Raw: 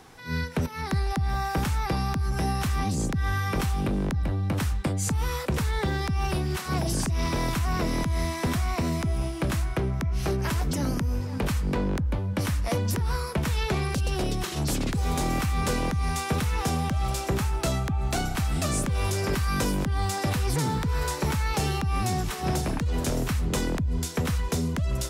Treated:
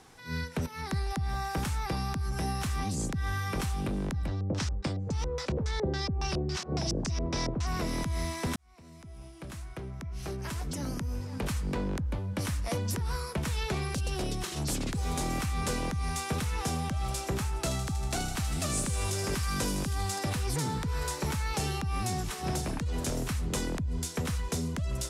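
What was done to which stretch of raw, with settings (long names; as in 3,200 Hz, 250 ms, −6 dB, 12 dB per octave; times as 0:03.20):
0:04.27–0:07.67: auto-filter low-pass square 3.6 Hz 510–5,600 Hz
0:08.56–0:11.58: fade in
0:17.48–0:20.19: delay with a high-pass on its return 79 ms, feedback 81%, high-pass 3,300 Hz, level −7 dB
whole clip: low-pass filter 10,000 Hz 12 dB per octave; high-shelf EQ 7,500 Hz +9.5 dB; level −5.5 dB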